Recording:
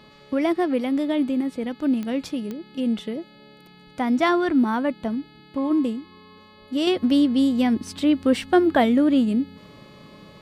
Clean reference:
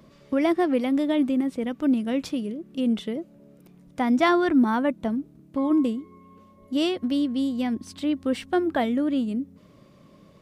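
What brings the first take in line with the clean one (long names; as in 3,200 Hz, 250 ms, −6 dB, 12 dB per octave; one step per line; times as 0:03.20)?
click removal
hum removal 426.3 Hz, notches 11
level 0 dB, from 0:06.87 −6 dB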